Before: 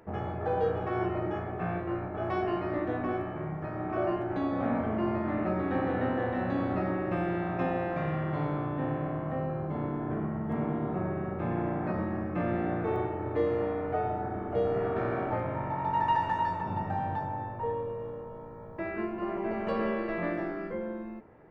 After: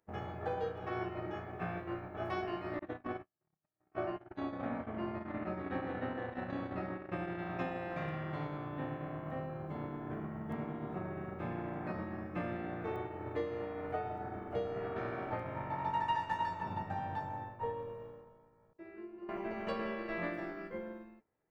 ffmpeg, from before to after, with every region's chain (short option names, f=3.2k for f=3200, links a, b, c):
-filter_complex "[0:a]asettb=1/sr,asplit=3[a][b][c];[a]atrim=end=2.794[d];[b]atrim=start=2.79:end=7.39,asetpts=PTS-STARTPTS,afade=t=in:d=0.004:c=qsin,afade=t=out:st=4.596:d=0.004:c=qsin,lowpass=f=3.6k:p=1,agate=range=-32dB:threshold=-32dB:ratio=16:release=100:detection=peak[e];[c]atrim=start=7.386[f];[d][e]acrossfade=d=0.004:c1=hsin:c2=qsin[g];[g][f]acrossfade=d=0.004:c1=qsin:c2=hsin,asettb=1/sr,asplit=3[h][i][j];[h]atrim=end=18.734[k];[i]atrim=start=18.73:end=19.29,asetpts=PTS-STARTPTS,afade=t=in:d=0.004:c=qsin,afade=t=out:st=0.556:d=0.004:c=qsin,agate=range=-33dB:threshold=-39dB:ratio=3:release=100:detection=peak,equalizer=f=360:t=o:w=0.56:g=13.5,acompressor=threshold=-40dB:ratio=3:attack=3.2:release=140:knee=1:detection=peak[l];[j]atrim=start=19.286[m];[k][l]acrossfade=d=0.004:c1=hsin:c2=qsin[n];[n][m]acrossfade=d=0.004:c1=qsin:c2=hsin,acompressor=threshold=-32dB:ratio=6,highshelf=f=2.2k:g=11,agate=range=-33dB:threshold=-27dB:ratio=3:detection=peak,volume=4dB"